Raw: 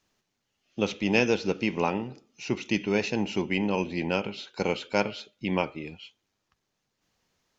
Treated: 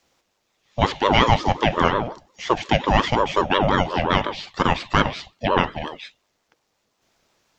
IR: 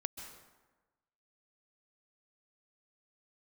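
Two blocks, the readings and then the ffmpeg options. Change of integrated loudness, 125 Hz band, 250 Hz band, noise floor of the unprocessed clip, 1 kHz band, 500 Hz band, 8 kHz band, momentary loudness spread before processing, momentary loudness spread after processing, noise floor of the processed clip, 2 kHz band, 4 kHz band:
+7.5 dB, +10.0 dB, +3.0 dB, −80 dBFS, +15.0 dB, +5.5 dB, can't be measured, 14 LU, 13 LU, −72 dBFS, +7.0 dB, +10.5 dB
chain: -filter_complex "[0:a]apsyclip=12.5dB,acrossover=split=3700[link_01][link_02];[link_02]acompressor=threshold=-34dB:ratio=4:attack=1:release=60[link_03];[link_01][link_03]amix=inputs=2:normalize=0,aeval=exprs='val(0)*sin(2*PI*570*n/s+570*0.4/5.6*sin(2*PI*5.6*n/s))':channel_layout=same,volume=-1.5dB"

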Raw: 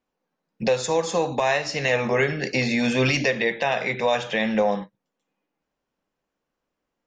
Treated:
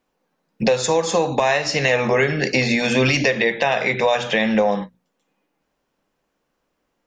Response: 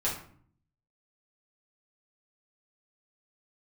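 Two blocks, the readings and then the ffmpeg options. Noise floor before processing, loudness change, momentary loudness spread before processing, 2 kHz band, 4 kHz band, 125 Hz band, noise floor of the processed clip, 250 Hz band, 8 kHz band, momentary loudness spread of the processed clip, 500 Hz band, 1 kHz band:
−83 dBFS, +4.0 dB, 4 LU, +4.5 dB, +5.0 dB, +4.0 dB, −74 dBFS, +4.0 dB, +5.5 dB, 3 LU, +4.0 dB, +4.0 dB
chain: -af "bandreject=frequency=60:width_type=h:width=6,bandreject=frequency=120:width_type=h:width=6,bandreject=frequency=180:width_type=h:width=6,bandreject=frequency=240:width_type=h:width=6,acompressor=threshold=-26dB:ratio=2,volume=8.5dB"

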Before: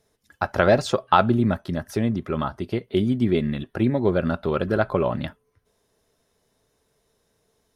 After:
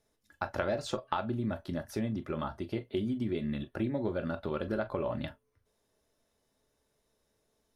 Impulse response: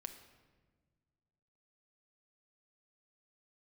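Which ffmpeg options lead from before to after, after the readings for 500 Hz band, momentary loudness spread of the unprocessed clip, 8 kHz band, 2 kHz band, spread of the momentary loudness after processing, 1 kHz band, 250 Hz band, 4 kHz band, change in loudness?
−12.0 dB, 9 LU, can't be measured, −12.5 dB, 5 LU, −14.0 dB, −11.0 dB, −11.0 dB, −12.0 dB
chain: -filter_complex "[0:a]acompressor=threshold=-21dB:ratio=6[link_01];[1:a]atrim=start_sample=2205,afade=type=out:start_time=0.13:duration=0.01,atrim=end_sample=6174,asetrate=74970,aresample=44100[link_02];[link_01][link_02]afir=irnorm=-1:irlink=0,volume=1.5dB"

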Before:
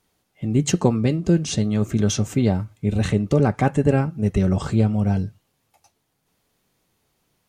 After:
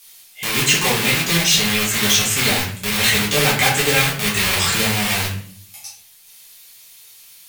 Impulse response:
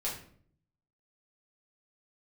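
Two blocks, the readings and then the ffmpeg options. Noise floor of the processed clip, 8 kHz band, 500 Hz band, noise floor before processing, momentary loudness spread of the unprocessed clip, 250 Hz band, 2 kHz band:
−47 dBFS, +14.0 dB, −1.0 dB, −72 dBFS, 4 LU, −5.0 dB, +18.0 dB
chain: -filter_complex "[0:a]asplit=2[link_01][link_02];[link_02]aeval=exprs='(mod(12.6*val(0)+1,2)-1)/12.6':channel_layout=same,volume=-4dB[link_03];[link_01][link_03]amix=inputs=2:normalize=0,acrossover=split=2900[link_04][link_05];[link_05]acompressor=threshold=-40dB:ratio=4:attack=1:release=60[link_06];[link_04][link_06]amix=inputs=2:normalize=0,tiltshelf=frequency=830:gain=-7.5,crystalizer=i=6:c=0,equalizer=frequency=2800:width_type=o:width=1.5:gain=5[link_07];[1:a]atrim=start_sample=2205,asetrate=42777,aresample=44100[link_08];[link_07][link_08]afir=irnorm=-1:irlink=0,volume=-3.5dB"

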